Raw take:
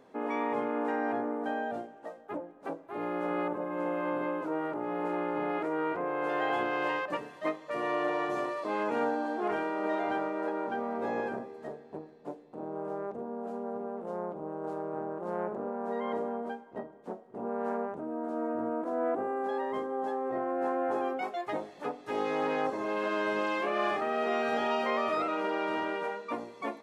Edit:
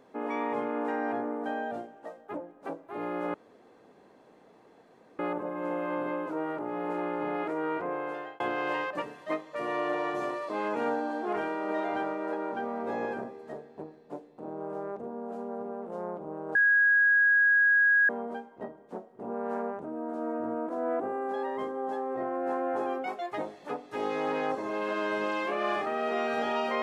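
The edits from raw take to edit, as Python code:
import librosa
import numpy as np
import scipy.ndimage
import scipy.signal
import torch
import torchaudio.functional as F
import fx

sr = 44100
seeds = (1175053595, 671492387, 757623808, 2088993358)

y = fx.edit(x, sr, fx.insert_room_tone(at_s=3.34, length_s=1.85),
    fx.fade_out_span(start_s=6.08, length_s=0.47),
    fx.bleep(start_s=14.7, length_s=1.54, hz=1650.0, db=-19.0), tone=tone)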